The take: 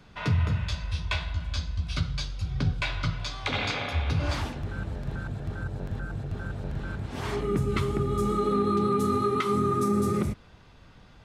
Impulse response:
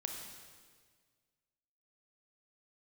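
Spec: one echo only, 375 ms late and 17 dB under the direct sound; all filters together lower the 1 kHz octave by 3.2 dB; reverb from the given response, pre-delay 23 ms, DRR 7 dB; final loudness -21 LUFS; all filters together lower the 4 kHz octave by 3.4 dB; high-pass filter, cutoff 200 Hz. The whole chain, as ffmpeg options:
-filter_complex "[0:a]highpass=200,equalizer=f=1000:t=o:g=-4,equalizer=f=4000:t=o:g=-4,aecho=1:1:375:0.141,asplit=2[s0][s1];[1:a]atrim=start_sample=2205,adelay=23[s2];[s1][s2]afir=irnorm=-1:irlink=0,volume=0.473[s3];[s0][s3]amix=inputs=2:normalize=0,volume=3.55"

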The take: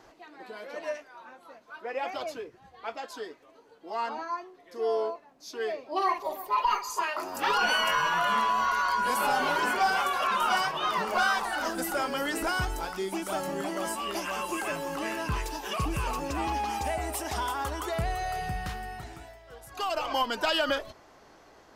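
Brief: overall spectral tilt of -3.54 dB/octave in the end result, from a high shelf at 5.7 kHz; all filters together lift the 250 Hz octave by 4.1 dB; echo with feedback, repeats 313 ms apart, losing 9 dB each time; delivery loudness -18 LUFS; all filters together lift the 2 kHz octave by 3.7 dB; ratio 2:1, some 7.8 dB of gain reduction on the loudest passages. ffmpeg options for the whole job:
-af "equalizer=f=250:t=o:g=5.5,equalizer=f=2000:t=o:g=4.5,highshelf=f=5700:g=8,acompressor=threshold=0.02:ratio=2,aecho=1:1:313|626|939|1252:0.355|0.124|0.0435|0.0152,volume=5.31"

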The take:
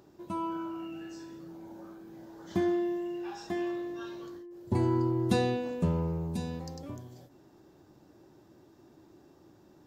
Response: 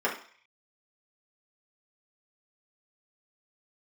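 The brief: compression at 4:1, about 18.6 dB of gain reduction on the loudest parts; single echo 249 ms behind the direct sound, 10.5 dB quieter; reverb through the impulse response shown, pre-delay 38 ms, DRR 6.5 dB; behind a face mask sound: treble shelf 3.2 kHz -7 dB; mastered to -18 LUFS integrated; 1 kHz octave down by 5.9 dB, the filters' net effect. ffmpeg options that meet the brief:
-filter_complex "[0:a]equalizer=f=1000:t=o:g=-7,acompressor=threshold=0.00447:ratio=4,aecho=1:1:249:0.299,asplit=2[s0][s1];[1:a]atrim=start_sample=2205,adelay=38[s2];[s1][s2]afir=irnorm=-1:irlink=0,volume=0.126[s3];[s0][s3]amix=inputs=2:normalize=0,highshelf=f=3200:g=-7,volume=23.7"

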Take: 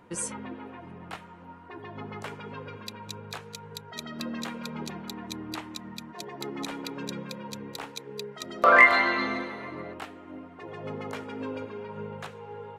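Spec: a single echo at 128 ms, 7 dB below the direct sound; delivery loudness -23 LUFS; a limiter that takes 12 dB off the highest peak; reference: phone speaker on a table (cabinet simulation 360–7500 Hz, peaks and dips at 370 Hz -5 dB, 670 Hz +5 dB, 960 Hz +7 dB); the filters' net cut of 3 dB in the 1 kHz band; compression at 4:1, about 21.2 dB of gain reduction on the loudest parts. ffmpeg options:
-af "equalizer=f=1000:t=o:g=-8.5,acompressor=threshold=0.01:ratio=4,alimiter=level_in=2.24:limit=0.0631:level=0:latency=1,volume=0.447,highpass=f=360:w=0.5412,highpass=f=360:w=1.3066,equalizer=f=370:t=q:w=4:g=-5,equalizer=f=670:t=q:w=4:g=5,equalizer=f=960:t=q:w=4:g=7,lowpass=f=7500:w=0.5412,lowpass=f=7500:w=1.3066,aecho=1:1:128:0.447,volume=12.6"

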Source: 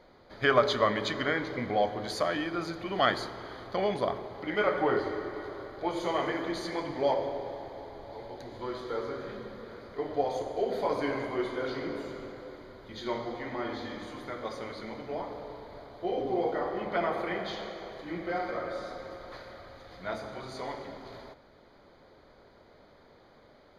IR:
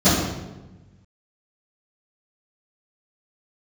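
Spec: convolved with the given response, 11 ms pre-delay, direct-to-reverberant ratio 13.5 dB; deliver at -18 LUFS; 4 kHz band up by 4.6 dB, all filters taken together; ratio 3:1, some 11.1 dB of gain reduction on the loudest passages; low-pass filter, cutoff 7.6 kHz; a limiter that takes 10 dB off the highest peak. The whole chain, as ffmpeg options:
-filter_complex "[0:a]lowpass=7600,equalizer=f=4000:t=o:g=6,acompressor=threshold=0.0224:ratio=3,alimiter=level_in=1.78:limit=0.0631:level=0:latency=1,volume=0.562,asplit=2[s0][s1];[1:a]atrim=start_sample=2205,adelay=11[s2];[s1][s2]afir=irnorm=-1:irlink=0,volume=0.0158[s3];[s0][s3]amix=inputs=2:normalize=0,volume=11.2"

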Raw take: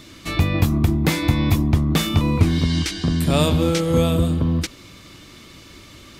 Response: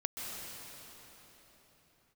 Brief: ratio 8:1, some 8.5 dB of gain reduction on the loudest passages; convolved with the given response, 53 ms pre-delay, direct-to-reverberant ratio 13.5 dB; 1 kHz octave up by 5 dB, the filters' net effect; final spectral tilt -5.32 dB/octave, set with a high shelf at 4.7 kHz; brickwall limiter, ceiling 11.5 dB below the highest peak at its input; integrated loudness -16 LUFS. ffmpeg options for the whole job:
-filter_complex "[0:a]equalizer=f=1000:t=o:g=6,highshelf=f=4700:g=3,acompressor=threshold=0.1:ratio=8,alimiter=limit=0.0944:level=0:latency=1,asplit=2[s0][s1];[1:a]atrim=start_sample=2205,adelay=53[s2];[s1][s2]afir=irnorm=-1:irlink=0,volume=0.15[s3];[s0][s3]amix=inputs=2:normalize=0,volume=4.47"

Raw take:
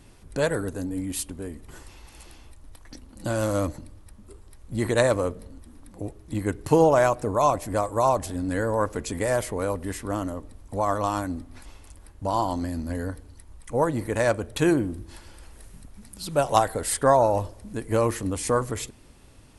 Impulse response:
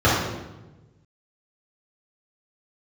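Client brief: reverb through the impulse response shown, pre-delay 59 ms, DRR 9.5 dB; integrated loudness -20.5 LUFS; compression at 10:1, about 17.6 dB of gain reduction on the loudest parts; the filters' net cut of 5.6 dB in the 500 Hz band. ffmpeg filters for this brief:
-filter_complex "[0:a]equalizer=f=500:t=o:g=-7,acompressor=threshold=0.0178:ratio=10,asplit=2[s0][s1];[1:a]atrim=start_sample=2205,adelay=59[s2];[s1][s2]afir=irnorm=-1:irlink=0,volume=0.0251[s3];[s0][s3]amix=inputs=2:normalize=0,volume=8.41"

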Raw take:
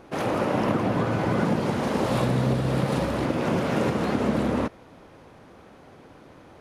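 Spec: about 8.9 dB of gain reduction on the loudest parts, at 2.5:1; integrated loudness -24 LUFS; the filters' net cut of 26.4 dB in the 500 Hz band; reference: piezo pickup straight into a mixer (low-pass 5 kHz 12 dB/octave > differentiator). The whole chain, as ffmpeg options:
-af "equalizer=f=500:t=o:g=-4.5,acompressor=threshold=0.02:ratio=2.5,lowpass=5000,aderivative,volume=28.2"

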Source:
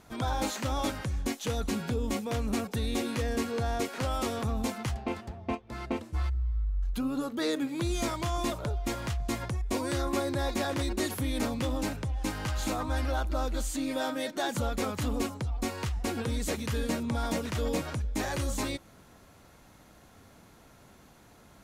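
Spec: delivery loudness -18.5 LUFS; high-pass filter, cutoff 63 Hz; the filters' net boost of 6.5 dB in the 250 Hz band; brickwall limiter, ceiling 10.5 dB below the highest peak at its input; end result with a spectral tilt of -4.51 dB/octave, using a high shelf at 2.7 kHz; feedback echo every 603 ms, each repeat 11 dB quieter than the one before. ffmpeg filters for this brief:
-af "highpass=63,equalizer=f=250:t=o:g=7.5,highshelf=f=2700:g=7,alimiter=limit=0.0668:level=0:latency=1,aecho=1:1:603|1206|1809:0.282|0.0789|0.0221,volume=5.01"

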